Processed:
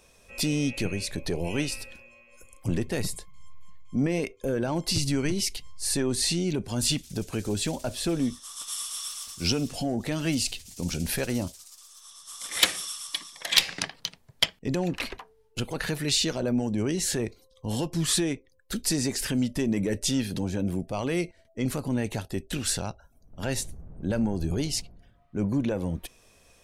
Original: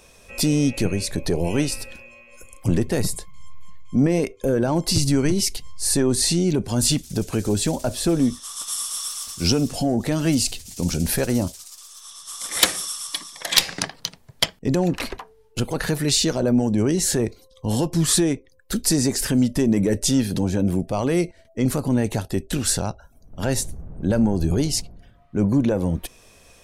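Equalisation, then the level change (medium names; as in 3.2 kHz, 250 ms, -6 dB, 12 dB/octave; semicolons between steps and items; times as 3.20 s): dynamic bell 2.7 kHz, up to +7 dB, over -41 dBFS, Q 0.97; -7.5 dB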